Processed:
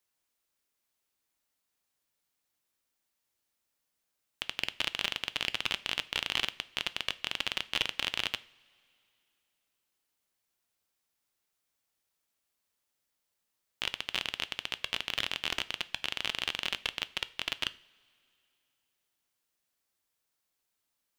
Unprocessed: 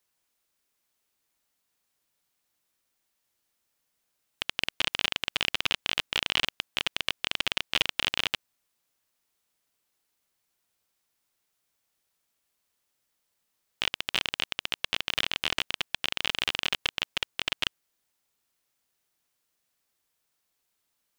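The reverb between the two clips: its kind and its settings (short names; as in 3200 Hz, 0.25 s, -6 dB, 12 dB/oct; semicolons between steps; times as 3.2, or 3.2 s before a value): two-slope reverb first 0.41 s, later 2.8 s, from -20 dB, DRR 14.5 dB; gain -4.5 dB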